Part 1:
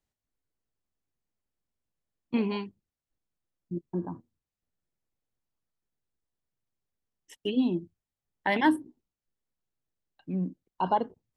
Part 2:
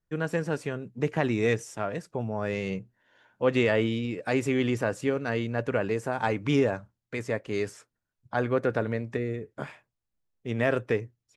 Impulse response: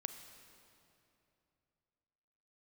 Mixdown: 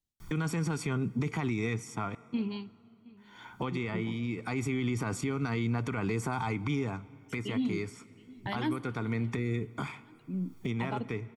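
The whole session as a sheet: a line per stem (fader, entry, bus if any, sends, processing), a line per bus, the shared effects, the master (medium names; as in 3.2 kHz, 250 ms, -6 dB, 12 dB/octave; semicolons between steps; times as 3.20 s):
-5.5 dB, 0.00 s, send -9.5 dB, echo send -21.5 dB, high-order bell 960 Hz -8.5 dB 2.8 oct
-0.5 dB, 0.20 s, muted 2.15–3.17 s, send -15 dB, no echo send, comb 0.9 ms, depth 84%; three bands compressed up and down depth 100%; auto duck -11 dB, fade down 0.85 s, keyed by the first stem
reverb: on, RT60 2.8 s, pre-delay 31 ms
echo: feedback delay 718 ms, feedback 47%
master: peak limiter -23 dBFS, peak gain reduction 11.5 dB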